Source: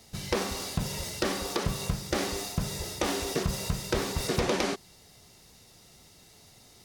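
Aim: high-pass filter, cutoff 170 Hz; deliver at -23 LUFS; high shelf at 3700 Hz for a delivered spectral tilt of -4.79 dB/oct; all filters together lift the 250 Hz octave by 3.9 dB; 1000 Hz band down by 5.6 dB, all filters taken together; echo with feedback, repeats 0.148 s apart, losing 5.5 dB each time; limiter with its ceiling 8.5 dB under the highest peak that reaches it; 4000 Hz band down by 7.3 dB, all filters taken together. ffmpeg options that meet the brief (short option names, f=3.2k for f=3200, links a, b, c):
-af "highpass=170,equalizer=f=250:t=o:g=7.5,equalizer=f=1k:t=o:g=-7.5,highshelf=f=3.7k:g=-3,equalizer=f=4k:t=o:g=-7,alimiter=limit=-22.5dB:level=0:latency=1,aecho=1:1:148|296|444|592|740|888|1036:0.531|0.281|0.149|0.079|0.0419|0.0222|0.0118,volume=10dB"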